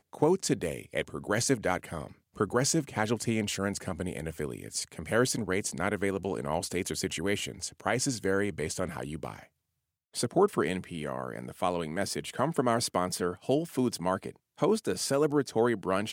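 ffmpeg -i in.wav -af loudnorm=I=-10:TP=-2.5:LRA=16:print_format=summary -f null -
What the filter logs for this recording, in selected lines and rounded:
Input Integrated:    -30.3 LUFS
Input True Peak:     -11.2 dBTP
Input LRA:             2.3 LU
Input Threshold:     -40.6 LUFS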